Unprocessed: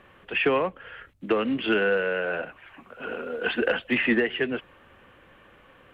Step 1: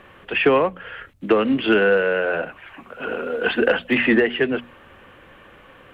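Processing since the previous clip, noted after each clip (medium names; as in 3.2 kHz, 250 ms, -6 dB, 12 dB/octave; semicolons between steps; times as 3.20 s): hum notches 60/120/180/240 Hz; dynamic bell 2.5 kHz, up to -3 dB, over -38 dBFS, Q 0.86; trim +7 dB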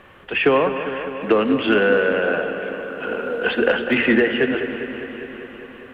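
feedback echo behind a low-pass 201 ms, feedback 74%, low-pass 2.7 kHz, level -10 dB; Schroeder reverb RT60 3.7 s, DRR 11.5 dB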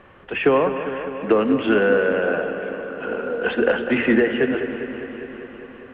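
low-pass 1.7 kHz 6 dB/octave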